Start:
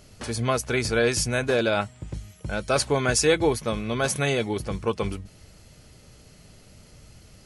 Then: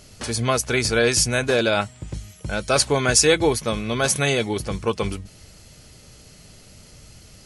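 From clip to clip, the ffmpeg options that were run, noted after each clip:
-af "equalizer=f=6.9k:w=0.41:g=5,volume=2.5dB"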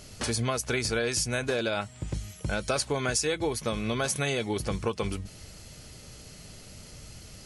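-af "acompressor=threshold=-26dB:ratio=5"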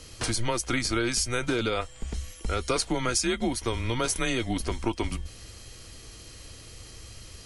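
-af "aeval=exprs='val(0)+0.001*sin(2*PI*3300*n/s)':c=same,afreqshift=-120,volume=1.5dB"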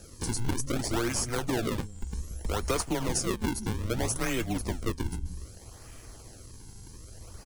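-filter_complex "[0:a]acrossover=split=220|4800[a][b][c];[a]aecho=1:1:179:0.668[d];[b]acrusher=samples=41:mix=1:aa=0.000001:lfo=1:lforange=65.6:lforate=0.63[e];[d][e][c]amix=inputs=3:normalize=0,volume=-2dB"

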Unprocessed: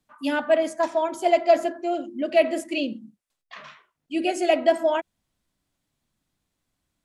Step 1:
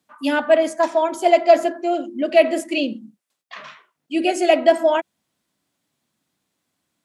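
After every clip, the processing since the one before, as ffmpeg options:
-af "highpass=170,volume=5dB"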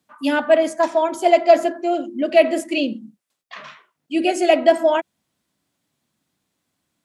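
-af "lowshelf=f=140:g=5.5"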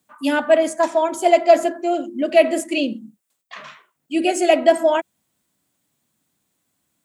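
-af "aexciter=amount=1.1:drive=9.2:freq=7k"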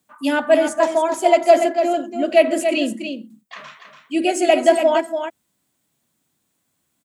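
-af "aecho=1:1:287:0.422"

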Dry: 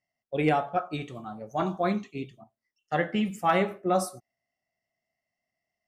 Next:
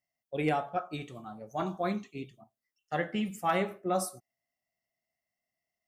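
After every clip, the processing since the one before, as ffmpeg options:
-af "highshelf=f=7.7k:g=8.5,volume=-5dB"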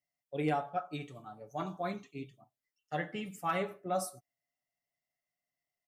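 -af "aecho=1:1:6.9:0.48,volume=-5dB"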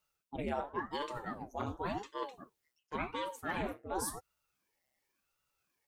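-af "areverse,acompressor=threshold=-45dB:ratio=4,areverse,aeval=exprs='val(0)*sin(2*PI*410*n/s+410*0.85/0.92*sin(2*PI*0.92*n/s))':c=same,volume=11.5dB"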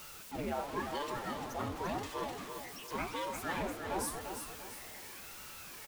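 -af "aeval=exprs='val(0)+0.5*0.0106*sgn(val(0))':c=same,aecho=1:1:346|692|1038|1384|1730:0.447|0.179|0.0715|0.0286|0.0114,volume=-2.5dB"

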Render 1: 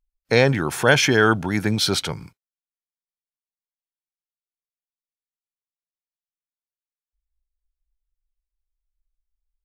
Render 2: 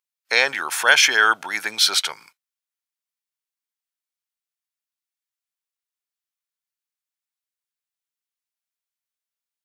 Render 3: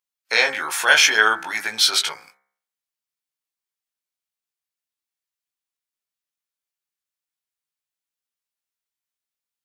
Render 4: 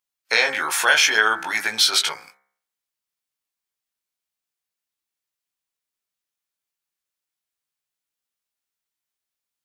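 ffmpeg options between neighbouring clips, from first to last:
-af "highpass=1.1k,volume=5dB"
-af "flanger=delay=17.5:depth=2.1:speed=0.62,bandreject=f=66.45:t=h:w=4,bandreject=f=132.9:t=h:w=4,bandreject=f=199.35:t=h:w=4,bandreject=f=265.8:t=h:w=4,bandreject=f=332.25:t=h:w=4,bandreject=f=398.7:t=h:w=4,bandreject=f=465.15:t=h:w=4,bandreject=f=531.6:t=h:w=4,bandreject=f=598.05:t=h:w=4,bandreject=f=664.5:t=h:w=4,bandreject=f=730.95:t=h:w=4,bandreject=f=797.4:t=h:w=4,bandreject=f=863.85:t=h:w=4,bandreject=f=930.3:t=h:w=4,bandreject=f=996.75:t=h:w=4,bandreject=f=1.0632k:t=h:w=4,bandreject=f=1.12965k:t=h:w=4,bandreject=f=1.1961k:t=h:w=4,bandreject=f=1.26255k:t=h:w=4,bandreject=f=1.329k:t=h:w=4,bandreject=f=1.39545k:t=h:w=4,bandreject=f=1.4619k:t=h:w=4,bandreject=f=1.52835k:t=h:w=4,bandreject=f=1.5948k:t=h:w=4,bandreject=f=1.66125k:t=h:w=4,bandreject=f=1.7277k:t=h:w=4,bandreject=f=1.79415k:t=h:w=4,bandreject=f=1.8606k:t=h:w=4,bandreject=f=1.92705k:t=h:w=4,bandreject=f=1.9935k:t=h:w=4,bandreject=f=2.05995k:t=h:w=4,bandreject=f=2.1264k:t=h:w=4,bandreject=f=2.19285k:t=h:w=4,bandreject=f=2.2593k:t=h:w=4,volume=3.5dB"
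-af "acompressor=threshold=-17dB:ratio=2.5,volume=2.5dB"

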